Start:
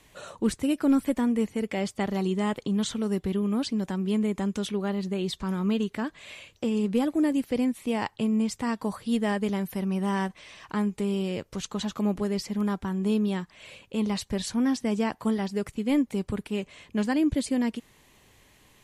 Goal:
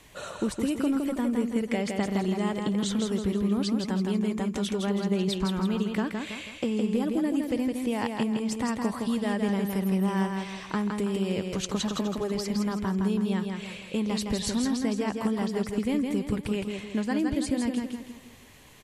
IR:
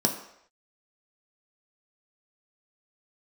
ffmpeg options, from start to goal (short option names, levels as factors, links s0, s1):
-filter_complex "[0:a]acompressor=threshold=0.0355:ratio=6,asplit=2[s0][s1];[s1]aecho=0:1:163|326|489|652|815:0.596|0.244|0.1|0.0411|0.0168[s2];[s0][s2]amix=inputs=2:normalize=0,volume=1.58"